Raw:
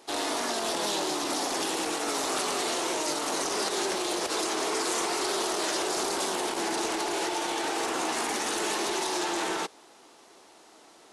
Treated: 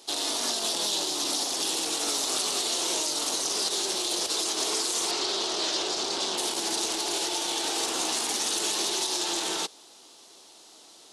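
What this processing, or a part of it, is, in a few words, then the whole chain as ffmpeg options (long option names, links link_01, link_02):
over-bright horn tweeter: -filter_complex "[0:a]asettb=1/sr,asplit=3[link_01][link_02][link_03];[link_01]atrim=end=5.114[link_04];[link_02]atrim=start=5.11:end=6.38,asetpts=PTS-STARTPTS,afade=type=in:duration=0.004:curve=qsin,afade=type=out:start_time=1.266:duration=0.004:curve=qsin,lowpass=5200[link_05];[link_03]atrim=start=6.376[link_06];[link_04][link_05]acrossfade=duration=0.004:curve1=hsin:curve2=qsin[link_07];[link_07][link_06]acrossfade=duration=0.004:curve1=qsin:curve2=hsin,highshelf=frequency=2700:width_type=q:width=1.5:gain=8.5,alimiter=limit=-14.5dB:level=0:latency=1:release=76,volume=-2.5dB"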